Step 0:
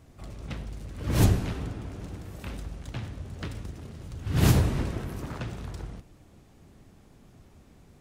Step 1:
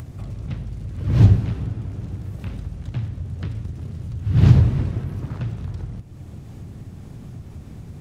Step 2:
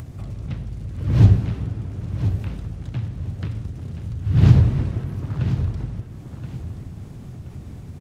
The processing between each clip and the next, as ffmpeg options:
-filter_complex "[0:a]acrossover=split=5200[a][b];[b]acompressor=threshold=-58dB:ratio=4:attack=1:release=60[c];[a][c]amix=inputs=2:normalize=0,equalizer=f=110:w=0.71:g=14,acompressor=mode=upward:threshold=-22dB:ratio=2.5,volume=-3dB"
-af "aecho=1:1:1026|2052|3078:0.316|0.0854|0.0231"

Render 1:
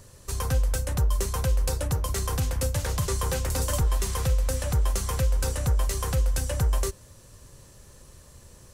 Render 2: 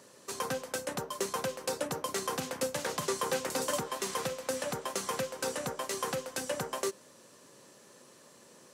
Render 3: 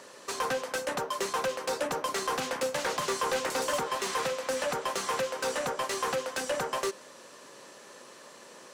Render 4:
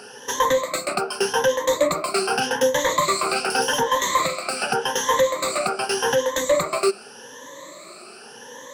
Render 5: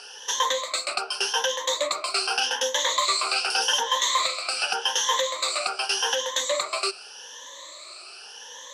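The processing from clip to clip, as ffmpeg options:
-af "highpass=f=210:w=0.5412,highpass=f=210:w=1.3066,highshelf=f=7.8k:g=-9"
-filter_complex "[0:a]asplit=2[a][b];[b]highpass=f=720:p=1,volume=19dB,asoftclip=type=tanh:threshold=-17.5dB[c];[a][c]amix=inputs=2:normalize=0,lowpass=f=3.2k:p=1,volume=-6dB,volume=-2dB"
-af "afftfilt=real='re*pow(10,20/40*sin(2*PI*(1.1*log(max(b,1)*sr/1024/100)/log(2)-(0.85)*(pts-256)/sr)))':imag='im*pow(10,20/40*sin(2*PI*(1.1*log(max(b,1)*sr/1024/100)/log(2)-(0.85)*(pts-256)/sr)))':win_size=1024:overlap=0.75,volume=5dB"
-af "aexciter=amount=3.3:drive=6.9:freq=2.8k,highpass=710,lowpass=4.2k,volume=-3.5dB"

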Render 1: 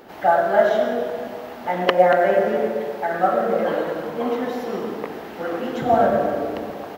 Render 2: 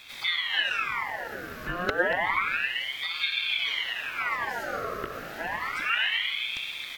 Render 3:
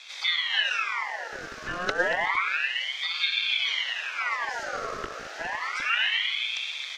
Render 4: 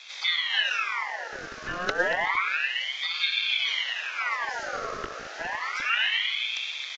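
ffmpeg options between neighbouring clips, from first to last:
-filter_complex "[0:a]bass=f=250:g=-4,treble=f=4k:g=7,acrossover=split=400[a][b];[b]acompressor=threshold=-34dB:ratio=2[c];[a][c]amix=inputs=2:normalize=0,aeval=exprs='val(0)*sin(2*PI*1900*n/s+1900*0.55/0.3*sin(2*PI*0.3*n/s))':c=same"
-filter_complex "[0:a]acrossover=split=400|480|2400[a][b][c][d];[a]acrusher=bits=4:dc=4:mix=0:aa=0.000001[e];[e][b][c][d]amix=inputs=4:normalize=0,lowpass=f=6.1k:t=q:w=2.3"
-af "aresample=16000,aresample=44100"

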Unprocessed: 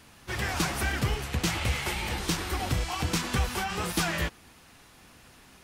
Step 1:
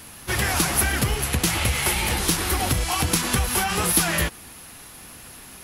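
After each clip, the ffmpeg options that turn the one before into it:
-af "highshelf=f=7.6k:g=7.5,acompressor=threshold=-27dB:ratio=6,equalizer=f=11k:w=7.8:g=14.5,volume=8.5dB"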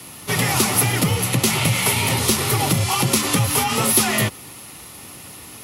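-af "acontrast=37,afreqshift=49,bandreject=f=1.6k:w=5.2,volume=-1.5dB"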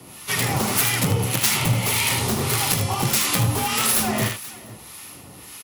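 -filter_complex "[0:a]aeval=exprs='(mod(3.16*val(0)+1,2)-1)/3.16':c=same,asplit=2[a][b];[b]aecho=0:1:43|78|478:0.266|0.473|0.106[c];[a][c]amix=inputs=2:normalize=0,acrossover=split=980[d][e];[d]aeval=exprs='val(0)*(1-0.7/2+0.7/2*cos(2*PI*1.7*n/s))':c=same[f];[e]aeval=exprs='val(0)*(1-0.7/2-0.7/2*cos(2*PI*1.7*n/s))':c=same[g];[f][g]amix=inputs=2:normalize=0"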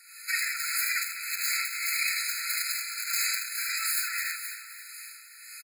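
-af "aecho=1:1:272|544|816|1088|1360:0.188|0.102|0.0549|0.0297|0.016,alimiter=limit=-14dB:level=0:latency=1:release=25,afftfilt=real='re*eq(mod(floor(b*sr/1024/1300),2),1)':imag='im*eq(mod(floor(b*sr/1024/1300),2),1)':win_size=1024:overlap=0.75"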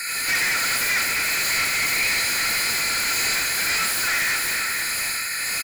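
-filter_complex "[0:a]asplit=2[a][b];[b]highpass=f=720:p=1,volume=36dB,asoftclip=type=tanh:threshold=-14.5dB[c];[a][c]amix=inputs=2:normalize=0,lowpass=f=5.8k:p=1,volume=-6dB"

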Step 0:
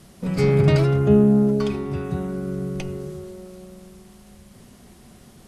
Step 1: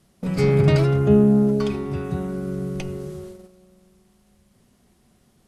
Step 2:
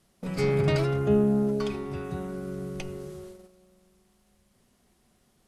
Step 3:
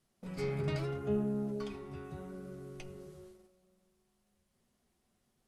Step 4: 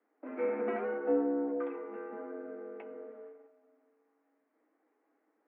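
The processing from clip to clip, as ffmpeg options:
-af "agate=range=-12dB:threshold=-37dB:ratio=16:detection=peak"
-af "equalizer=f=130:w=0.46:g=-5.5,volume=-3.5dB"
-af "flanger=delay=7.9:depth=5.8:regen=-47:speed=0.74:shape=sinusoidal,volume=-7dB"
-af "highpass=f=210:t=q:w=0.5412,highpass=f=210:t=q:w=1.307,lowpass=f=2k:t=q:w=0.5176,lowpass=f=2k:t=q:w=0.7071,lowpass=f=2k:t=q:w=1.932,afreqshift=76,volume=5dB"

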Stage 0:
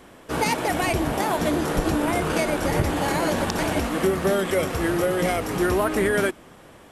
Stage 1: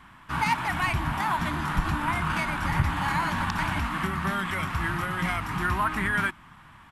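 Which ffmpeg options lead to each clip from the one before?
-af "firequalizer=gain_entry='entry(150,0);entry(470,-25);entry(950,3);entry(5900,-11)':delay=0.05:min_phase=1"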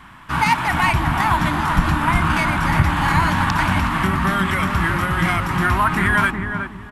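-filter_complex "[0:a]asplit=2[a][b];[b]adelay=368,lowpass=f=960:p=1,volume=-3.5dB,asplit=2[c][d];[d]adelay=368,lowpass=f=960:p=1,volume=0.32,asplit=2[e][f];[f]adelay=368,lowpass=f=960:p=1,volume=0.32,asplit=2[g][h];[h]adelay=368,lowpass=f=960:p=1,volume=0.32[i];[a][c][e][g][i]amix=inputs=5:normalize=0,volume=8dB"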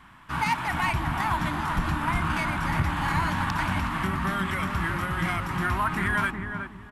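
-af "volume=7.5dB,asoftclip=hard,volume=-7.5dB,volume=-8.5dB"

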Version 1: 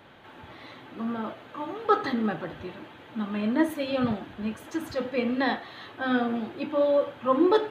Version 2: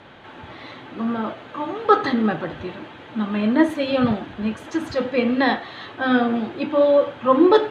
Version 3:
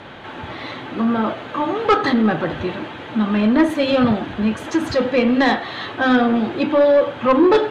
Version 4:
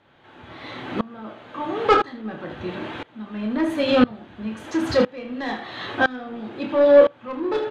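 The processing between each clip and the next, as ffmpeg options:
-af "lowpass=7.1k,volume=7dB"
-filter_complex "[0:a]asplit=2[a][b];[b]acompressor=threshold=-24dB:ratio=6,volume=-1.5dB[c];[a][c]amix=inputs=2:normalize=0,asoftclip=type=tanh:threshold=-10dB,volume=2.5dB"
-af "aecho=1:1:28|77:0.398|0.251,aeval=exprs='val(0)*pow(10,-24*if(lt(mod(-0.99*n/s,1),2*abs(-0.99)/1000),1-mod(-0.99*n/s,1)/(2*abs(-0.99)/1000),(mod(-0.99*n/s,1)-2*abs(-0.99)/1000)/(1-2*abs(-0.99)/1000))/20)':c=same,volume=1dB"

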